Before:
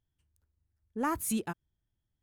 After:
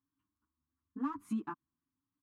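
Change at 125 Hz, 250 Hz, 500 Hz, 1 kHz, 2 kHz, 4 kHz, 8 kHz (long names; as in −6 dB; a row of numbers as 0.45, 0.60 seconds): −7.5 dB, −3.0 dB, −15.5 dB, −7.5 dB, −12.0 dB, below −15 dB, below −25 dB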